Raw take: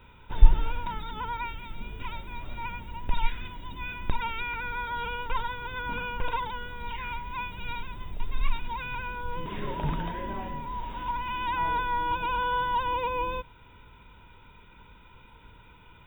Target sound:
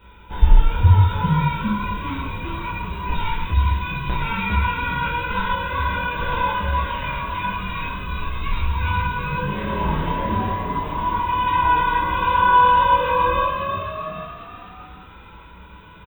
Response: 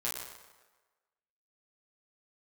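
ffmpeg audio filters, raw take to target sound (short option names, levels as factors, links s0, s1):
-filter_complex "[0:a]asplit=7[s0][s1][s2][s3][s4][s5][s6];[s1]adelay=402,afreqshift=62,volume=0.631[s7];[s2]adelay=804,afreqshift=124,volume=0.292[s8];[s3]adelay=1206,afreqshift=186,volume=0.133[s9];[s4]adelay=1608,afreqshift=248,volume=0.0617[s10];[s5]adelay=2010,afreqshift=310,volume=0.0282[s11];[s6]adelay=2412,afreqshift=372,volume=0.013[s12];[s0][s7][s8][s9][s10][s11][s12]amix=inputs=7:normalize=0[s13];[1:a]atrim=start_sample=2205,afade=t=out:st=0.27:d=0.01,atrim=end_sample=12348[s14];[s13][s14]afir=irnorm=-1:irlink=0,volume=1.5"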